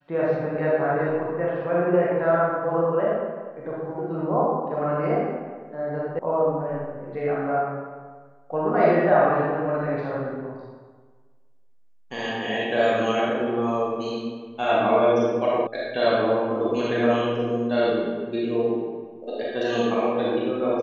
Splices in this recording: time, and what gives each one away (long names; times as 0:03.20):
0:06.19: cut off before it has died away
0:15.67: cut off before it has died away